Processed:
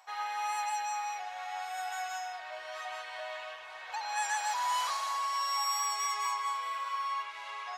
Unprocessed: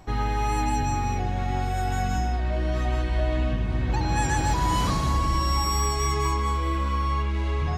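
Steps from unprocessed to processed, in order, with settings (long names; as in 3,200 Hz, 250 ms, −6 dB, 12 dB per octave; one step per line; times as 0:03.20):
inverse Chebyshev high-pass filter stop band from 290 Hz, stop band 50 dB
level −4 dB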